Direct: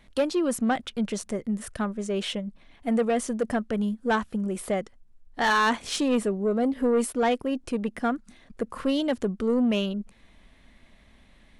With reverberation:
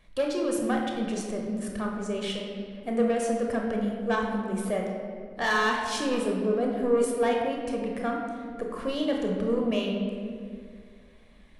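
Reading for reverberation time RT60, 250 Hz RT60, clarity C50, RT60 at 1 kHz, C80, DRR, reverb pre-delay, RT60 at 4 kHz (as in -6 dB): 2.1 s, 2.4 s, 2.5 dB, 1.9 s, 4.0 dB, 0.0 dB, 22 ms, 1.3 s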